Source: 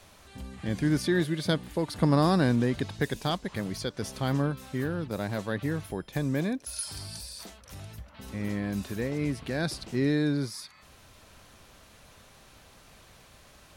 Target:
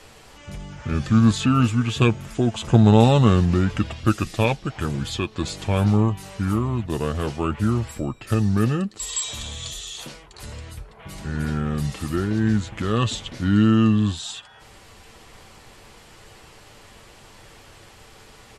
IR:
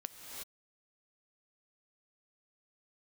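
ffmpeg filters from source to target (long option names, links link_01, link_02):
-af "aecho=1:1:6.6:0.35,asetrate=32667,aresample=44100,volume=7dB"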